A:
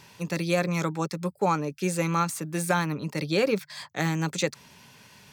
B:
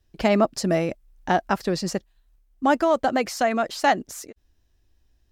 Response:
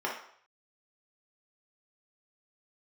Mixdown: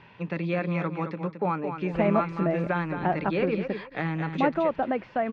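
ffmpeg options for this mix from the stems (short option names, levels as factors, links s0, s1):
-filter_complex "[0:a]acompressor=threshold=0.0224:ratio=1.5,volume=1.19,asplit=2[s0][s1];[s1]volume=0.398[s2];[1:a]highshelf=f=2200:g=-11,adelay=1750,volume=0.631[s3];[s2]aecho=0:1:219|438|657|876:1|0.24|0.0576|0.0138[s4];[s0][s3][s4]amix=inputs=3:normalize=0,lowpass=f=2800:w=0.5412,lowpass=f=2800:w=1.3066,bandreject=f=50:t=h:w=6,bandreject=f=100:t=h:w=6,bandreject=f=150:t=h:w=6"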